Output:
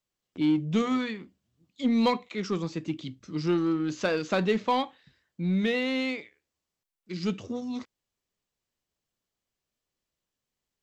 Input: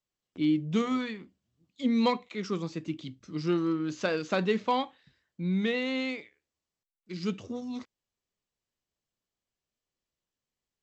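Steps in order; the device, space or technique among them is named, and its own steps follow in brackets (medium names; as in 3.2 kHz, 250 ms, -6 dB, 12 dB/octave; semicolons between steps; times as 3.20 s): parallel distortion (in parallel at -8 dB: hard clipper -28 dBFS, distortion -9 dB)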